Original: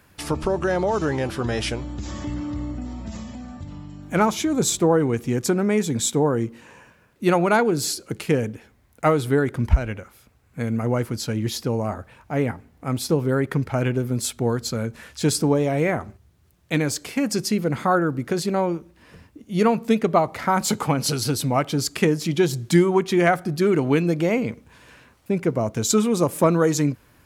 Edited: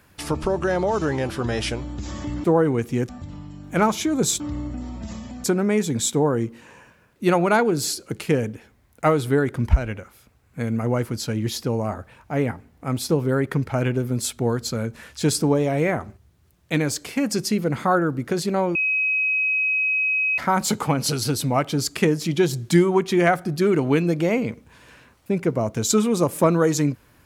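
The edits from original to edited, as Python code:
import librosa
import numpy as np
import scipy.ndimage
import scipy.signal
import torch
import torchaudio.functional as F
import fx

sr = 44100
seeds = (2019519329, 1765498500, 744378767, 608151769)

y = fx.edit(x, sr, fx.swap(start_s=2.44, length_s=1.04, other_s=4.79, other_length_s=0.65),
    fx.bleep(start_s=18.75, length_s=1.63, hz=2540.0, db=-18.5), tone=tone)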